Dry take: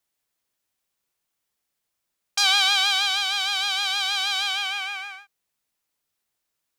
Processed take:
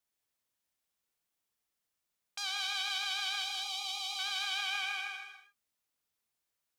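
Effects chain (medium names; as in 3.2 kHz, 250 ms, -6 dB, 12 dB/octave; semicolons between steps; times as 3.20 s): peak limiter -18 dBFS, peak gain reduction 11.5 dB; 3.42–4.19 s: static phaser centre 320 Hz, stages 8; gated-style reverb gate 290 ms flat, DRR 3.5 dB; trim -7.5 dB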